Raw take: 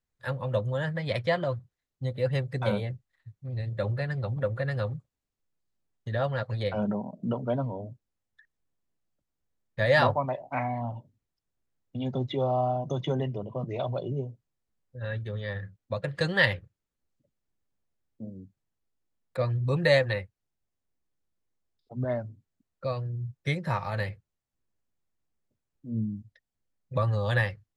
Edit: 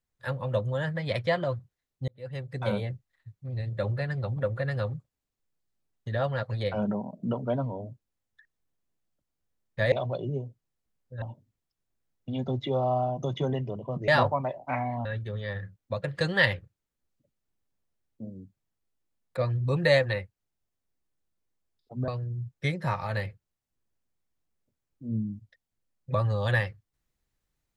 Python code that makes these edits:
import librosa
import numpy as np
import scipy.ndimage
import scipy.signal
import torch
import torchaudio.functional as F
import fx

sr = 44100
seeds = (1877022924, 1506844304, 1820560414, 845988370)

y = fx.edit(x, sr, fx.fade_in_span(start_s=2.08, length_s=0.72),
    fx.swap(start_s=9.92, length_s=0.97, other_s=13.75, other_length_s=1.3),
    fx.cut(start_s=22.08, length_s=0.83), tone=tone)